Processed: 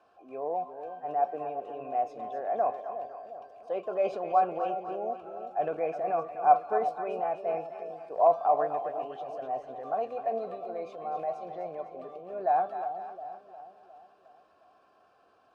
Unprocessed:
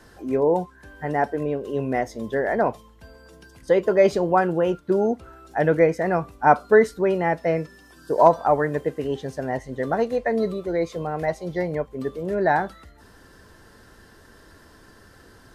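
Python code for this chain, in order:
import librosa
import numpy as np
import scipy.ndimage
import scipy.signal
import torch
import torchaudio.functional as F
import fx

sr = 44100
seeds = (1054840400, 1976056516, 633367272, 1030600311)

y = fx.vowel_filter(x, sr, vowel='a')
y = fx.transient(y, sr, attack_db=-2, sustain_db=5)
y = fx.echo_split(y, sr, split_hz=730.0, low_ms=357, high_ms=253, feedback_pct=52, wet_db=-8.5)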